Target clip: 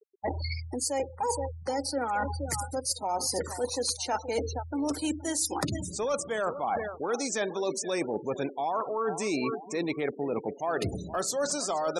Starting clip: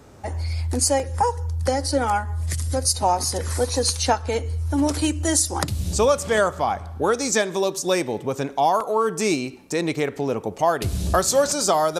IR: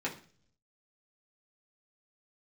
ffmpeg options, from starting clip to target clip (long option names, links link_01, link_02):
-filter_complex "[0:a]highpass=170,asplit=2[link_01][link_02];[1:a]atrim=start_sample=2205,atrim=end_sample=6174,asetrate=42336,aresample=44100[link_03];[link_02][link_03]afir=irnorm=-1:irlink=0,volume=-25dB[link_04];[link_01][link_04]amix=inputs=2:normalize=0,acontrast=52,aecho=1:1:473|946|1419:0.168|0.0537|0.0172,afftfilt=real='re*gte(hypot(re,im),0.0631)':imag='im*gte(hypot(re,im),0.0631)':win_size=1024:overlap=0.75,areverse,acompressor=threshold=-27dB:ratio=12,areverse"